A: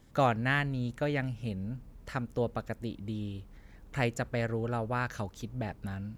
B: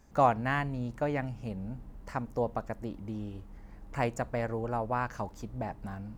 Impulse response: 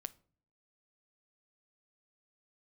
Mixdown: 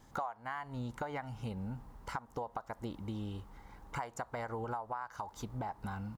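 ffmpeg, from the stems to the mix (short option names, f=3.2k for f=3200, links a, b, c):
-filter_complex "[0:a]volume=-2dB[a];[1:a]highpass=f=880:t=q:w=2.1,equalizer=f=2.5k:t=o:w=0.37:g=-10,adelay=1.4,volume=-0.5dB,asplit=2[b][c];[c]apad=whole_len=272212[d];[a][d]sidechaincompress=threshold=-38dB:ratio=8:attack=7.9:release=190[e];[e][b]amix=inputs=2:normalize=0,acompressor=threshold=-35dB:ratio=16"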